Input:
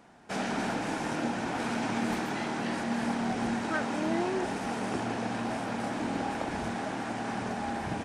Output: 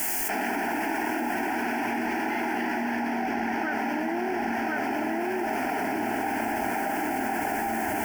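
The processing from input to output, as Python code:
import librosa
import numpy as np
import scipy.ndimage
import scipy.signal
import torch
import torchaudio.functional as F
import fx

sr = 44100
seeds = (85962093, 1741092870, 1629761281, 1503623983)

p1 = fx.doppler_pass(x, sr, speed_mps=8, closest_m=2.7, pass_at_s=3.44)
p2 = scipy.signal.sosfilt(scipy.signal.butter(8, 5700.0, 'lowpass', fs=sr, output='sos'), p1)
p3 = fx.low_shelf(p2, sr, hz=160.0, db=-11.5)
p4 = fx.rider(p3, sr, range_db=5, speed_s=0.5)
p5 = p3 + F.gain(torch.from_numpy(p4), 0.0).numpy()
p6 = fx.quant_dither(p5, sr, seeds[0], bits=10, dither='triangular')
p7 = fx.fixed_phaser(p6, sr, hz=780.0, stages=8)
p8 = p7 + 10.0 ** (-4.0 / 20.0) * np.pad(p7, (int(1050 * sr / 1000.0), 0))[:len(p7)]
y = fx.env_flatten(p8, sr, amount_pct=100)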